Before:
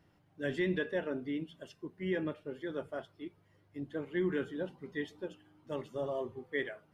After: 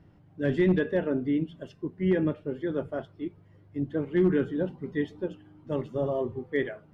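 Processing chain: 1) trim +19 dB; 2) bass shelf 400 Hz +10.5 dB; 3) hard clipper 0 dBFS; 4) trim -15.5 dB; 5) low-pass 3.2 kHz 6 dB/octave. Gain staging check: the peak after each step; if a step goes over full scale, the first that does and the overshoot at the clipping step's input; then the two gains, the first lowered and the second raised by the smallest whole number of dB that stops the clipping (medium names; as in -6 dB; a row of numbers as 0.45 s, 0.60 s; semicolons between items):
-3.0 dBFS, +3.5 dBFS, 0.0 dBFS, -15.5 dBFS, -15.5 dBFS; step 2, 3.5 dB; step 1 +15 dB, step 4 -11.5 dB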